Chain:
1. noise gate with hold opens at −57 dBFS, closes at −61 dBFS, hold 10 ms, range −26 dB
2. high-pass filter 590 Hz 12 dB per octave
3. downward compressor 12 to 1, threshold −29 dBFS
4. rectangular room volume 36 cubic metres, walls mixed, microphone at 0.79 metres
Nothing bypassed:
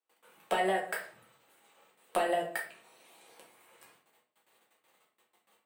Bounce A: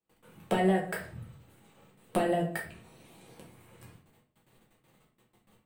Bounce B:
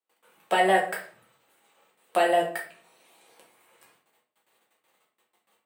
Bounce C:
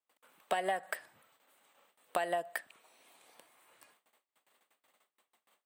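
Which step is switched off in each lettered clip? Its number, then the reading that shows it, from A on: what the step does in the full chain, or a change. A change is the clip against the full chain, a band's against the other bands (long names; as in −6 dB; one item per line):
2, 125 Hz band +18.5 dB
3, average gain reduction 5.5 dB
4, echo-to-direct ratio 2.5 dB to none audible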